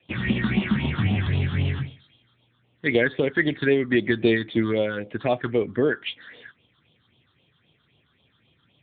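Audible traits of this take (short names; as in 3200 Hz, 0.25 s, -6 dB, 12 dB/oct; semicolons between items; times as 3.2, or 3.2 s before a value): phasing stages 6, 3.8 Hz, lowest notch 600–1700 Hz; AMR-NB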